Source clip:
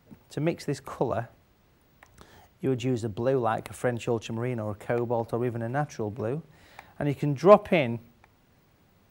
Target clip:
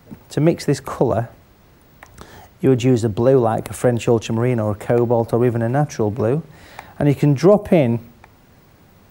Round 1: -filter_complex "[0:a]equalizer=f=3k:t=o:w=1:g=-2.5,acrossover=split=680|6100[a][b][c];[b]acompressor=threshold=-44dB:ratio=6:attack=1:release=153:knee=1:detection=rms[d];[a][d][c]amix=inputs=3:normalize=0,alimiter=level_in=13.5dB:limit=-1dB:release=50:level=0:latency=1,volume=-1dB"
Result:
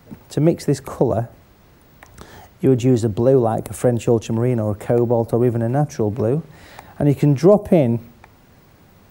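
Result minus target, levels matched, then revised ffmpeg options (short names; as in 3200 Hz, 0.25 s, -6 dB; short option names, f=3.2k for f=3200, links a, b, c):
compressor: peak gain reduction +7.5 dB
-filter_complex "[0:a]equalizer=f=3k:t=o:w=1:g=-2.5,acrossover=split=680|6100[a][b][c];[b]acompressor=threshold=-35dB:ratio=6:attack=1:release=153:knee=1:detection=rms[d];[a][d][c]amix=inputs=3:normalize=0,alimiter=level_in=13.5dB:limit=-1dB:release=50:level=0:latency=1,volume=-1dB"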